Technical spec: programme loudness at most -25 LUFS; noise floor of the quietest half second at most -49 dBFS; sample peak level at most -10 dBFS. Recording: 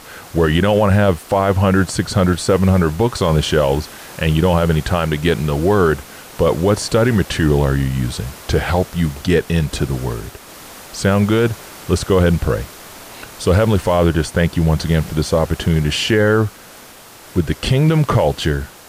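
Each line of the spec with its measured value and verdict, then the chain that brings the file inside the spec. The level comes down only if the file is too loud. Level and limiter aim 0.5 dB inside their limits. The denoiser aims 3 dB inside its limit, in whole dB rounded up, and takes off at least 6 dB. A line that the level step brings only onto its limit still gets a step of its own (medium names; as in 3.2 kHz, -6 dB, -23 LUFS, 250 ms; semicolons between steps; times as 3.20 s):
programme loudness -16.5 LUFS: fail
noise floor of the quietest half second -40 dBFS: fail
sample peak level -2.0 dBFS: fail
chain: noise reduction 6 dB, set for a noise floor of -40 dBFS; trim -9 dB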